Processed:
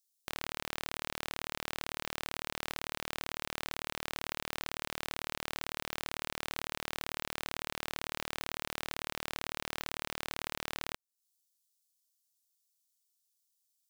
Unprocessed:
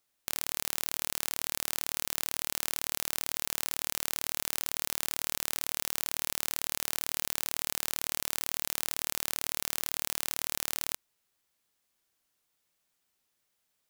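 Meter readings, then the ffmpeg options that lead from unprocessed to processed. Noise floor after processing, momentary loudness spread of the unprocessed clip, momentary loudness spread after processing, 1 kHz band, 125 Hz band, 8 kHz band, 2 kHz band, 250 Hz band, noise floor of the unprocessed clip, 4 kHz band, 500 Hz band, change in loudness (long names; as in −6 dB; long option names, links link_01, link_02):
below −85 dBFS, 0 LU, 0 LU, +1.5 dB, +1.5 dB, −13.0 dB, 0.0 dB, +1.5 dB, −79 dBFS, −3.5 dB, +1.5 dB, −7.5 dB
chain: -filter_complex "[0:a]acrossover=split=4000[link_01][link_02];[link_01]acrusher=bits=4:mix=0:aa=0.000001[link_03];[link_02]acompressor=threshold=-47dB:ratio=6[link_04];[link_03][link_04]amix=inputs=2:normalize=0"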